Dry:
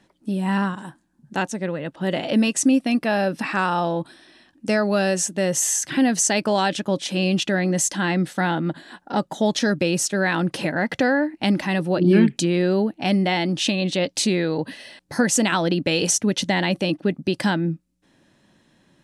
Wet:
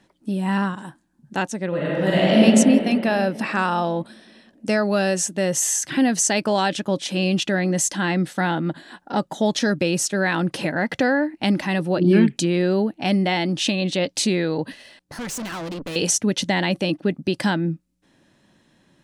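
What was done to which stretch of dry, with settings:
1.68–2.40 s: reverb throw, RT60 2.8 s, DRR -7 dB
14.72–15.96 s: valve stage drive 28 dB, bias 0.75

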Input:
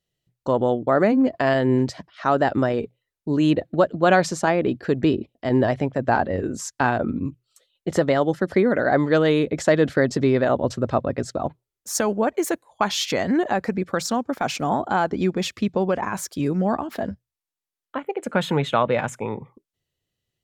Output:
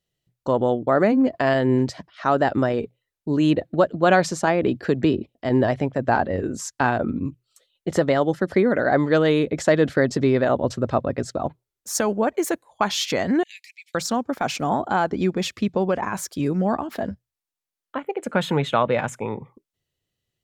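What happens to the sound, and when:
4.63–5.19 s: three bands compressed up and down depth 40%
13.43–13.95 s: steep high-pass 2.2 kHz 72 dB/octave

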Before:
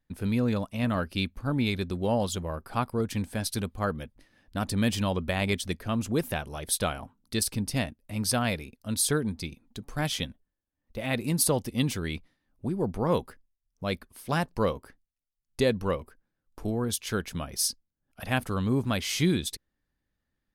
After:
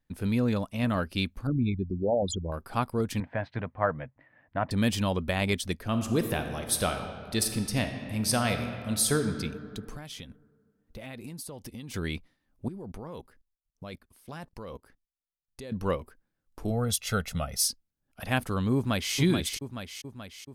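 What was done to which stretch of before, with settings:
1.47–2.52 s: resonances exaggerated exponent 3
3.20–4.71 s: cabinet simulation 110–2300 Hz, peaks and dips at 130 Hz +7 dB, 210 Hz -8 dB, 380 Hz -7 dB, 650 Hz +8 dB, 970 Hz +5 dB, 1.9 kHz +7 dB
5.84–9.37 s: reverb throw, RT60 2.2 s, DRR 6 dB
9.96–11.94 s: compression 12:1, threshold -37 dBFS
12.68–15.72 s: level held to a coarse grid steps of 20 dB
16.70–17.64 s: comb 1.5 ms, depth 81%
18.75–19.15 s: echo throw 430 ms, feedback 60%, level -6 dB

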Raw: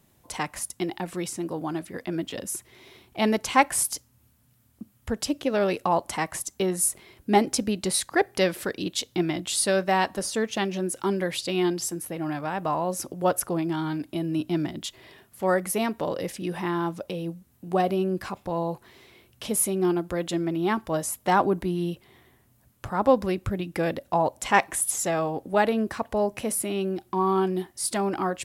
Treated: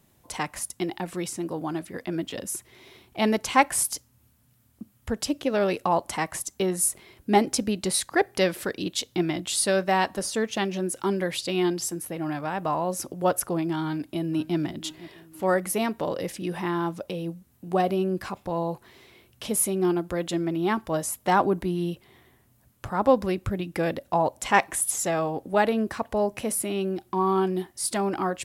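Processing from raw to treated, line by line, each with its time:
13.83–14.57 s: echo throw 500 ms, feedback 50%, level -17.5 dB

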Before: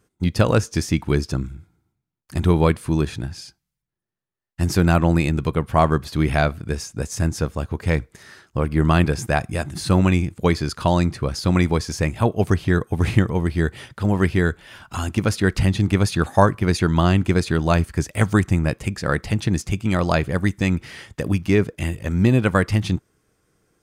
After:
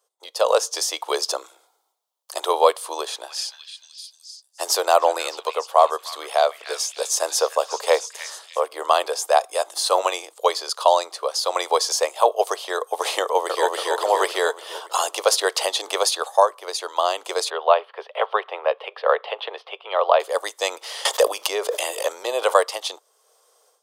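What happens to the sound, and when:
2.77–8.68 s: repeats whose band climbs or falls 302 ms, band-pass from 2.1 kHz, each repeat 0.7 oct, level -7 dB
13.21–13.68 s: echo throw 280 ms, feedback 60%, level -1 dB
17.50–20.20 s: elliptic band-pass 400–3100 Hz
21.05–22.63 s: level flattener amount 70%
whole clip: steep high-pass 490 Hz 48 dB/octave; high-order bell 1.9 kHz -12 dB 1.1 oct; level rider gain up to 13 dB; trim -1 dB

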